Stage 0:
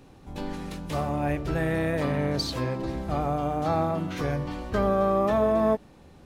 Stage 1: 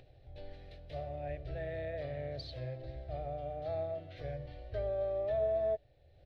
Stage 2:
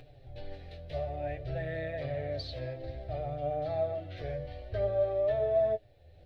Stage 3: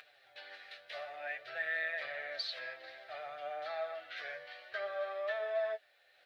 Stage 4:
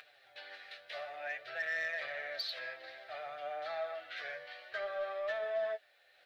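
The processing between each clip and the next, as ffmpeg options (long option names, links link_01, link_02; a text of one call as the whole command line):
ffmpeg -i in.wav -af "firequalizer=gain_entry='entry(130,0);entry(180,-25);entry(360,-11);entry(640,3);entry(980,-27);entry(1800,-6);entry(2600,-8);entry(4000,-4);entry(6900,-28)':delay=0.05:min_phase=1,acompressor=mode=upward:threshold=-43dB:ratio=2.5,volume=-9dB" out.wav
ffmpeg -i in.wav -af "flanger=delay=6.7:depth=5.4:regen=31:speed=0.56:shape=sinusoidal,volume=9dB" out.wav
ffmpeg -i in.wav -af "highpass=frequency=1400:width_type=q:width=2.7,volume=3.5dB" out.wav
ffmpeg -i in.wav -af "asoftclip=type=tanh:threshold=-28.5dB,volume=1dB" out.wav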